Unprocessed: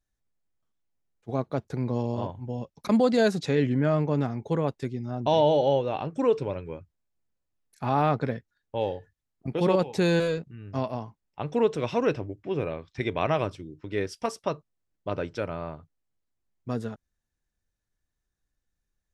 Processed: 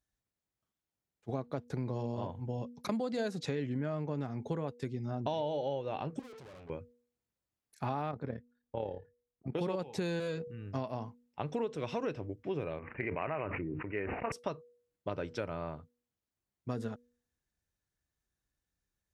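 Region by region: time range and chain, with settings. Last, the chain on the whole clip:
0:06.19–0:06.70: downward compressor 3 to 1, threshold −27 dBFS + tube saturation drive 48 dB, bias 0.65
0:08.11–0:09.55: high-shelf EQ 2,200 Hz −12 dB + amplitude modulation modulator 36 Hz, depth 45%
0:12.79–0:14.32: low-shelf EQ 400 Hz −7.5 dB + bad sample-rate conversion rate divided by 8×, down none, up filtered + level that may fall only so fast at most 27 dB per second
whole clip: high-pass filter 49 Hz; hum removal 241.4 Hz, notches 2; downward compressor 6 to 1, threshold −30 dBFS; level −2 dB

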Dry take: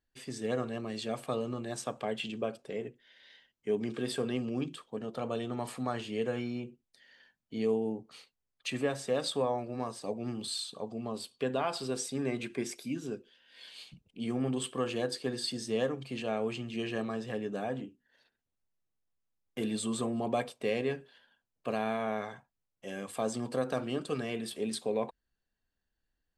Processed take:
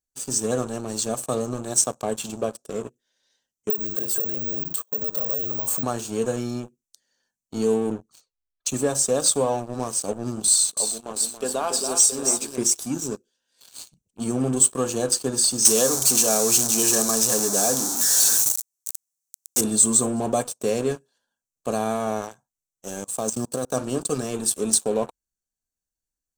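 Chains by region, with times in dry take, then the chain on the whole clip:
0:03.70–0:05.83: downward compressor 10 to 1, threshold −41 dBFS + comb filter 1.9 ms, depth 40% + bad sample-rate conversion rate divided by 2×, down filtered, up zero stuff
0:07.90–0:08.74: low-pass that shuts in the quiet parts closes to 2,600 Hz, open at −39 dBFS + low-shelf EQ 81 Hz +11 dB + flanger swept by the level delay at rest 3.3 ms, full sweep at −34.5 dBFS
0:10.49–0:12.58: high-pass filter 190 Hz + low-shelf EQ 290 Hz −10 dB + multi-tap delay 281/672 ms −6.5/−12 dB
0:15.65–0:19.61: converter with a step at zero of −34.5 dBFS + high-pass filter 220 Hz 6 dB per octave + high-shelf EQ 2,100 Hz +10 dB
0:23.04–0:23.74: mu-law and A-law mismatch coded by mu + output level in coarse steps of 17 dB
whole clip: high shelf with overshoot 4,200 Hz +11 dB, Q 3; leveller curve on the samples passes 3; thirty-one-band graphic EQ 2,000 Hz −12 dB, 5,000 Hz −10 dB, 8,000 Hz +4 dB; level −3 dB

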